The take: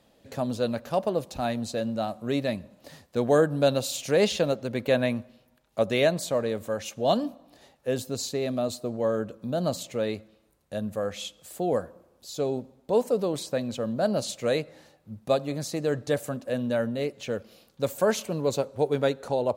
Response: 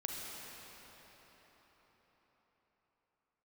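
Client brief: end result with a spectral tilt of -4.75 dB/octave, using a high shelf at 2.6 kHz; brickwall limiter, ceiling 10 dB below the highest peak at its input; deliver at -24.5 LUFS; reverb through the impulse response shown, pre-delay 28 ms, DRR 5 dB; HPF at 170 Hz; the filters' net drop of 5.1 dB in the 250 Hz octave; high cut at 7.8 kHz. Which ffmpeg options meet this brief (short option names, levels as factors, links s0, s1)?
-filter_complex "[0:a]highpass=170,lowpass=7800,equalizer=f=250:t=o:g=-5,highshelf=f=2600:g=-3.5,alimiter=limit=0.0891:level=0:latency=1,asplit=2[s0][s1];[1:a]atrim=start_sample=2205,adelay=28[s2];[s1][s2]afir=irnorm=-1:irlink=0,volume=0.473[s3];[s0][s3]amix=inputs=2:normalize=0,volume=2.37"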